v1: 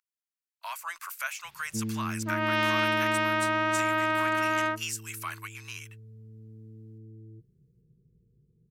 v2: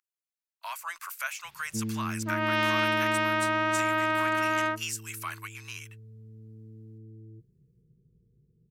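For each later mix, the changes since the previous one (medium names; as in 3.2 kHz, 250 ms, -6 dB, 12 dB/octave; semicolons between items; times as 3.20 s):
no change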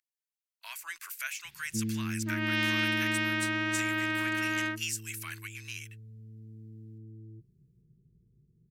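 master: add high-order bell 790 Hz -12.5 dB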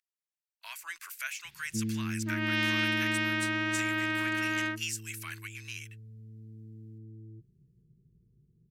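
speech: add treble shelf 9.4 kHz -4.5 dB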